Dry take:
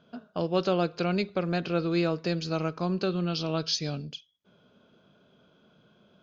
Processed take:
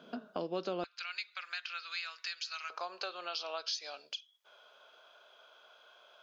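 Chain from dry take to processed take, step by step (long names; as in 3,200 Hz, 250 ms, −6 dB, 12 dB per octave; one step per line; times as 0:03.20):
high-pass filter 210 Hz 24 dB per octave, from 0:00.84 1,500 Hz, from 0:02.70 660 Hz
downward compressor 3 to 1, threshold −47 dBFS, peak gain reduction 18.5 dB
level +7 dB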